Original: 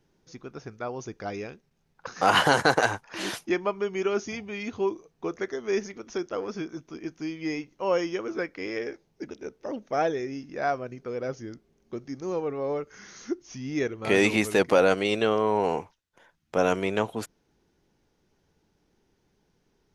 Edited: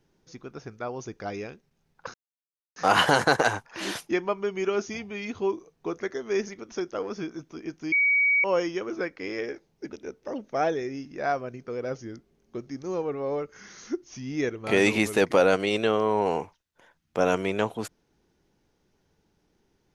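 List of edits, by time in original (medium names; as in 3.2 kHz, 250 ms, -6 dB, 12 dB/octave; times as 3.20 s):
2.14 s: insert silence 0.62 s
7.30–7.82 s: bleep 2.26 kHz -18.5 dBFS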